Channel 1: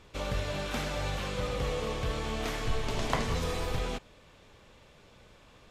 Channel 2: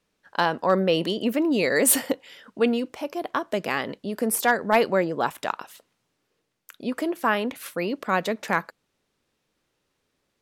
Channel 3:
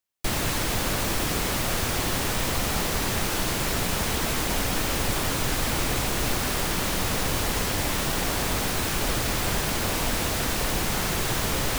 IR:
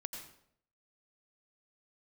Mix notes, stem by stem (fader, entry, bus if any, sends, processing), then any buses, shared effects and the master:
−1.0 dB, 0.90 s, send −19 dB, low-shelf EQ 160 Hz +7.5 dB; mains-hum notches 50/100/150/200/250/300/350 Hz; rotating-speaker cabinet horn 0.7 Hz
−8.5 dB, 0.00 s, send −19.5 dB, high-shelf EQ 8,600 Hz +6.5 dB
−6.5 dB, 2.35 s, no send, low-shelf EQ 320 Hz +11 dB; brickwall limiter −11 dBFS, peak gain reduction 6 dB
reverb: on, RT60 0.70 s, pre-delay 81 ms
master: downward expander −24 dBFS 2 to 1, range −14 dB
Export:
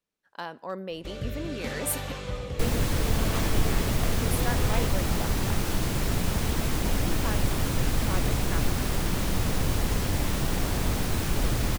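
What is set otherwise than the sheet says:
stem 2 −8.5 dB → −15.0 dB
stem 3: missing brickwall limiter −11 dBFS, peak gain reduction 6 dB
master: missing downward expander −24 dBFS 2 to 1, range −14 dB

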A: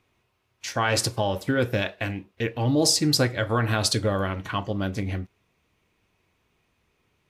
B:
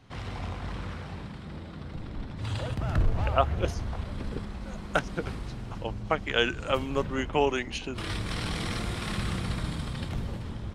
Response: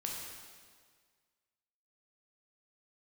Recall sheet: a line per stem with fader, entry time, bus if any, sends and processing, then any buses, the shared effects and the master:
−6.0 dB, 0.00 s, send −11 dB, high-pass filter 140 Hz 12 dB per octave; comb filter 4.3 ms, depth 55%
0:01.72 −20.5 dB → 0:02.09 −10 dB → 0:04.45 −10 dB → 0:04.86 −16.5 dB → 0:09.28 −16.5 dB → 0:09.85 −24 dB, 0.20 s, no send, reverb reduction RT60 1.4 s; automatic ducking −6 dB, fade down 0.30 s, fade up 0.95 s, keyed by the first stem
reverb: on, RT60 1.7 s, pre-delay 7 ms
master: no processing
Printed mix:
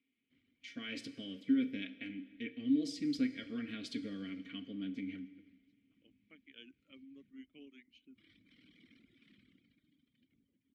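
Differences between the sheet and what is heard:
stem A: missing high-pass filter 140 Hz 12 dB per octave
master: extra formant filter i

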